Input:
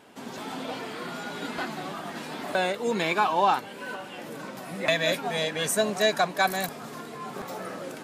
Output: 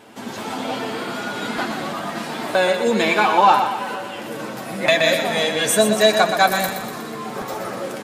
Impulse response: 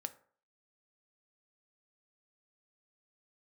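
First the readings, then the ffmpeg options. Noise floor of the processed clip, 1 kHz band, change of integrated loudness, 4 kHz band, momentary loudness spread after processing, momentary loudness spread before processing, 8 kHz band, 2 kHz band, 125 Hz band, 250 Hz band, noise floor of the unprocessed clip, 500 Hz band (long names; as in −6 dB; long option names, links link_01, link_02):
−32 dBFS, +8.5 dB, +8.5 dB, +8.5 dB, 15 LU, 14 LU, +8.5 dB, +8.0 dB, +6.0 dB, +9.0 dB, −41 dBFS, +9.0 dB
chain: -filter_complex "[0:a]aecho=1:1:122|244|366|488|610|732:0.422|0.211|0.105|0.0527|0.0264|0.0132,asplit=2[link_01][link_02];[1:a]atrim=start_sample=2205,adelay=9[link_03];[link_02][link_03]afir=irnorm=-1:irlink=0,volume=-3.5dB[link_04];[link_01][link_04]amix=inputs=2:normalize=0,volume=6.5dB"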